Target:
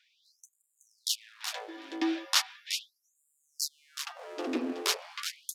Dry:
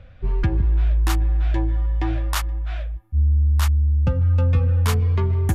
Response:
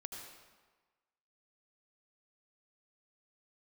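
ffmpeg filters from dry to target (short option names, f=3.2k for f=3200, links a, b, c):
-filter_complex "[0:a]acrossover=split=400|820|5000[a][b][c][d];[c]dynaudnorm=f=130:g=5:m=8dB[e];[d]alimiter=level_in=0.5dB:limit=-24dB:level=0:latency=1:release=437,volume=-0.5dB[f];[a][b][e][f]amix=inputs=4:normalize=0,firequalizer=gain_entry='entry(100,0);entry(190,5);entry(440,-14);entry(1100,-17);entry(5300,-5);entry(7500,-10)':delay=0.05:min_phase=1,asoftclip=type=hard:threshold=-16.5dB,highpass=f=72:w=0.5412,highpass=f=72:w=1.3066,equalizer=f=9.3k:w=0.36:g=9,aecho=1:1:374:0.422,afftfilt=real='re*gte(b*sr/1024,240*pow(7100/240,0.5+0.5*sin(2*PI*0.38*pts/sr)))':imag='im*gte(b*sr/1024,240*pow(7100/240,0.5+0.5*sin(2*PI*0.38*pts/sr)))':win_size=1024:overlap=0.75,volume=3.5dB"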